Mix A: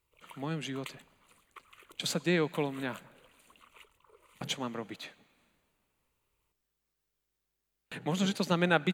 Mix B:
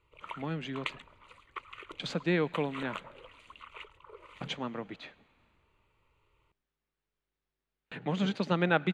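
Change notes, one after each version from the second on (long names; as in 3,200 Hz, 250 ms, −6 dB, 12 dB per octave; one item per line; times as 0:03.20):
background +10.5 dB
master: add low-pass filter 3,300 Hz 12 dB per octave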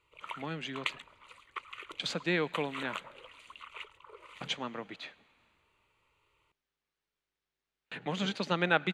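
master: add spectral tilt +2 dB per octave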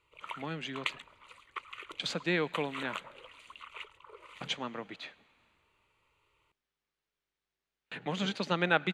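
nothing changed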